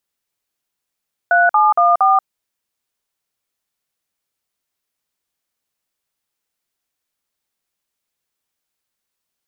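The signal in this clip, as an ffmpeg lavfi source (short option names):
-f lavfi -i "aevalsrc='0.251*clip(min(mod(t,0.232),0.183-mod(t,0.232))/0.002,0,1)*(eq(floor(t/0.232),0)*(sin(2*PI*697*mod(t,0.232))+sin(2*PI*1477*mod(t,0.232)))+eq(floor(t/0.232),1)*(sin(2*PI*852*mod(t,0.232))+sin(2*PI*1209*mod(t,0.232)))+eq(floor(t/0.232),2)*(sin(2*PI*697*mod(t,0.232))+sin(2*PI*1209*mod(t,0.232)))+eq(floor(t/0.232),3)*(sin(2*PI*770*mod(t,0.232))+sin(2*PI*1209*mod(t,0.232))))':d=0.928:s=44100"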